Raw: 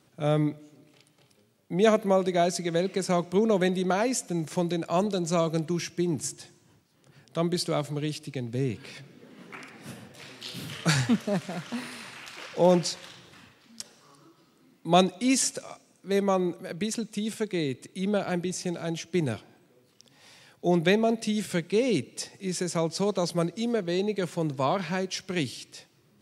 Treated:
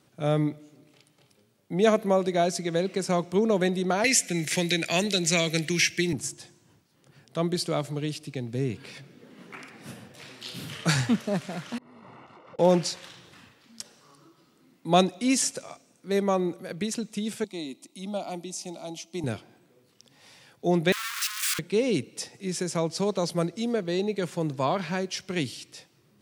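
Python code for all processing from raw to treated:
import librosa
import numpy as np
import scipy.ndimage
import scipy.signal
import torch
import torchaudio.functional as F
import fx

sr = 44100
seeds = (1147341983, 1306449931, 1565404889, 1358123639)

y = fx.chain(x, sr, fx.high_shelf_res(hz=1500.0, db=10.0, q=3.0),
    fx.band_squash(depth_pct=40), at=(4.04, 6.13))
y = fx.chain(y, sr, fx.over_compress(threshold_db=-44.0, ratio=-0.5),
    fx.savgol(points=65), at=(11.78, 12.59))
y = fx.chain(y, sr, fx.highpass(hz=320.0, slope=6),
    fx.fixed_phaser(hz=440.0, stages=6), at=(17.44, 19.24))
y = fx.chain(y, sr, fx.clip_1bit(),
    fx.steep_highpass(hz=1100.0, slope=72), at=(20.92, 21.59))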